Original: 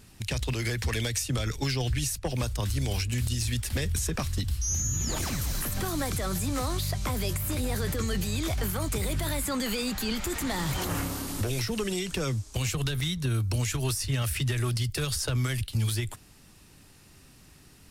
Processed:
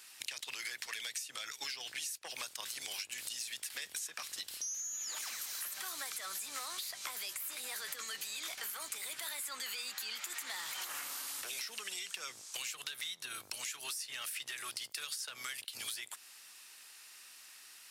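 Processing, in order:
sub-octave generator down 2 octaves, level +1 dB
high-pass filter 1,400 Hz 12 dB per octave
downward compressor, threshold −43 dBFS, peak gain reduction 15.5 dB
level +4 dB

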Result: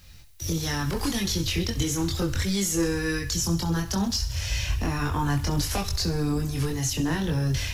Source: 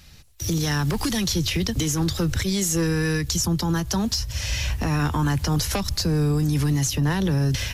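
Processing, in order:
feedback echo with a high-pass in the loop 66 ms, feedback 56%, high-pass 420 Hz, level −12.5 dB
multi-voice chorus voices 6, 0.33 Hz, delay 23 ms, depth 2.2 ms
background noise blue −65 dBFS

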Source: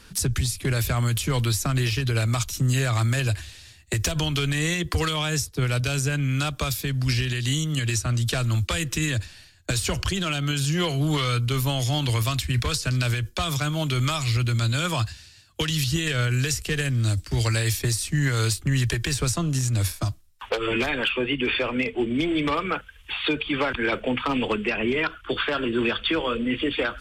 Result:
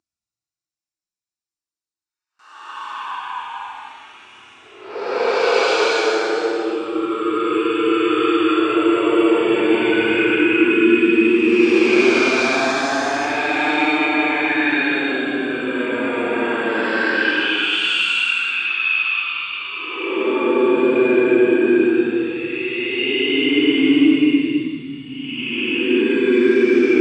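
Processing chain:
extreme stretch with random phases 23×, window 0.05 s, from 0:20.29
noise gate with hold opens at −50 dBFS
loudspeaker in its box 320–7,700 Hz, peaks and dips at 320 Hz +9 dB, 550 Hz −8 dB, 1,900 Hz −6 dB, 3,200 Hz −9 dB
level +9 dB

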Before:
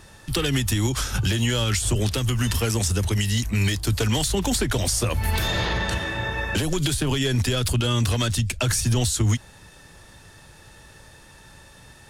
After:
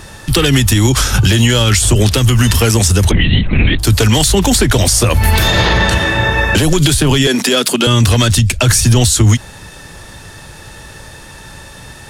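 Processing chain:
0:03.11–0:03.79: linear-prediction vocoder at 8 kHz whisper
0:07.27–0:07.87: Butterworth high-pass 200 Hz 36 dB per octave
boost into a limiter +15 dB
level −1 dB

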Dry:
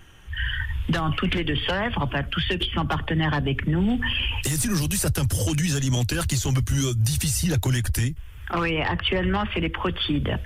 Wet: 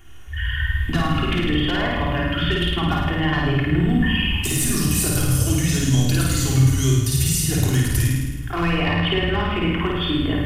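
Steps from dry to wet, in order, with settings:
high-shelf EQ 8,500 Hz +7 dB
flutter between parallel walls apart 9.1 metres, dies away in 1.1 s
convolution reverb RT60 0.95 s, pre-delay 3 ms, DRR 0.5 dB
level −3.5 dB

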